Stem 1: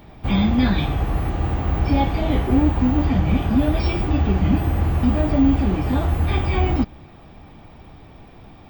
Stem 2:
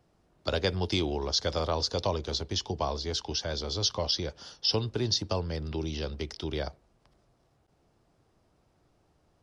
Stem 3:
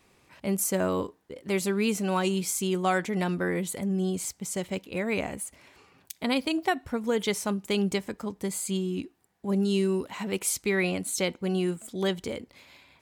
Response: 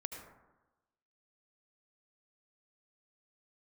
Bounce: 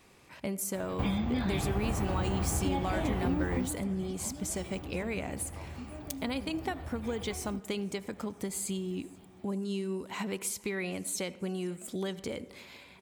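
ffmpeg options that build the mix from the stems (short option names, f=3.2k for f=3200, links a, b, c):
-filter_complex "[0:a]highpass=66,acompressor=threshold=-26dB:ratio=6,adelay=750,volume=-2.5dB,afade=t=out:st=3.54:d=0.23:silence=0.251189[a];[1:a]bandpass=f=900:t=q:w=2.2:csg=0,adelay=250,volume=-13.5dB[b];[2:a]acompressor=threshold=-35dB:ratio=6,volume=1dB,asplit=3[c][d][e];[d]volume=-10.5dB[f];[e]volume=-24dB[g];[3:a]atrim=start_sample=2205[h];[f][h]afir=irnorm=-1:irlink=0[i];[g]aecho=0:1:482|964|1446|1928|2410|2892|3374|3856|4338:1|0.59|0.348|0.205|0.121|0.0715|0.0422|0.0249|0.0147[j];[a][b][c][i][j]amix=inputs=5:normalize=0"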